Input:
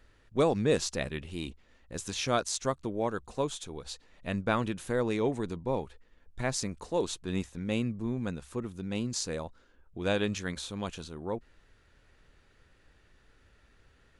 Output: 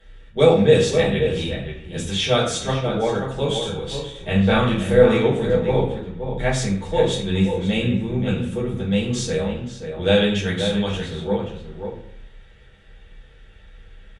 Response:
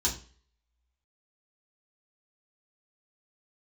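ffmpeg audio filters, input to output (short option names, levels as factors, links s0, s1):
-filter_complex "[0:a]asettb=1/sr,asplit=3[s0][s1][s2];[s0]atrim=end=3.454[s3];[s1]atrim=start=3.45:end=5.14,asetpts=PTS-STARTPTS,afade=t=in:d=0.004:c=qsin,afade=t=out:st=1.686:d=0.004:c=qsin,asplit=2[s4][s5];[s5]adelay=32,volume=0.562[s6];[s4][s6]amix=inputs=2:normalize=0,atrim=end_sample=74529[s7];[s2]atrim=start=5.136[s8];[s3][s7]acrossfade=d=0.004:c1=hsin:c2=qsin[s9];[s9][s8]acrossfade=d=0.004:c1=qsin:c2=hsin,asplit=2[s10][s11];[s11]adelay=530.6,volume=0.447,highshelf=f=4000:g=-11.9[s12];[s10][s12]amix=inputs=2:normalize=0[s13];[1:a]atrim=start_sample=2205,asetrate=22491,aresample=44100[s14];[s13][s14]afir=irnorm=-1:irlink=0,volume=0.668"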